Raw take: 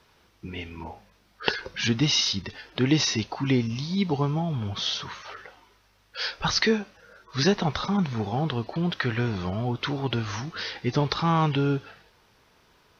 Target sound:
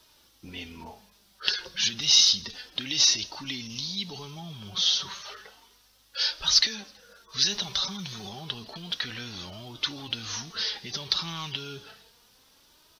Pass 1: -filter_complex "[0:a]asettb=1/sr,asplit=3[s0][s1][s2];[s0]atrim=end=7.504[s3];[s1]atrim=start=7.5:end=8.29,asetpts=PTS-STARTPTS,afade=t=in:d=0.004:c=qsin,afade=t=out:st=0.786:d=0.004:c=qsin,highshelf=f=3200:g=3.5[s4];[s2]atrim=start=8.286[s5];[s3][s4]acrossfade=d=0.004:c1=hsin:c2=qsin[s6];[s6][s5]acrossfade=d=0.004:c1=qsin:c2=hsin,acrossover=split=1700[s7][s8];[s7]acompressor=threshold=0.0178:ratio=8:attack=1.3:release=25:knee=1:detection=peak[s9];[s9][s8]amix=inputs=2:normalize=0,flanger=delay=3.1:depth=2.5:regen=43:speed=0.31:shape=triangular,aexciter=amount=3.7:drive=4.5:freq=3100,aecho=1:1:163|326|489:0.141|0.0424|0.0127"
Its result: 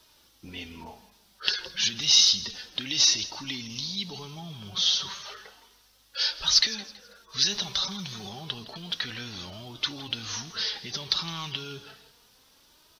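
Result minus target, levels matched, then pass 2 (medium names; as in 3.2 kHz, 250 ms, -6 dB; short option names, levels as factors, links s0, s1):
echo-to-direct +8 dB
-filter_complex "[0:a]asettb=1/sr,asplit=3[s0][s1][s2];[s0]atrim=end=7.504[s3];[s1]atrim=start=7.5:end=8.29,asetpts=PTS-STARTPTS,afade=t=in:d=0.004:c=qsin,afade=t=out:st=0.786:d=0.004:c=qsin,highshelf=f=3200:g=3.5[s4];[s2]atrim=start=8.286[s5];[s3][s4]acrossfade=d=0.004:c1=hsin:c2=qsin[s6];[s6][s5]acrossfade=d=0.004:c1=qsin:c2=hsin,acrossover=split=1700[s7][s8];[s7]acompressor=threshold=0.0178:ratio=8:attack=1.3:release=25:knee=1:detection=peak[s9];[s9][s8]amix=inputs=2:normalize=0,flanger=delay=3.1:depth=2.5:regen=43:speed=0.31:shape=triangular,aexciter=amount=3.7:drive=4.5:freq=3100,aecho=1:1:163|326:0.0562|0.0169"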